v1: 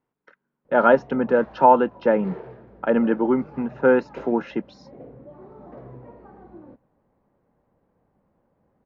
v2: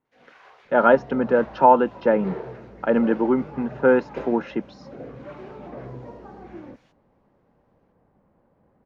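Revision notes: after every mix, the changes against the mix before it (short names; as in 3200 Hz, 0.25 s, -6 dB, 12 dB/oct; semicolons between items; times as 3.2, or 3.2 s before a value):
first sound: unmuted; second sound +4.5 dB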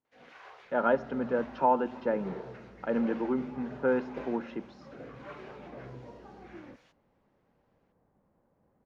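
speech -11.5 dB; second sound -8.0 dB; reverb: on, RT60 1.2 s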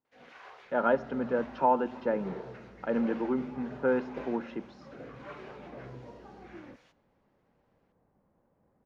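first sound: send on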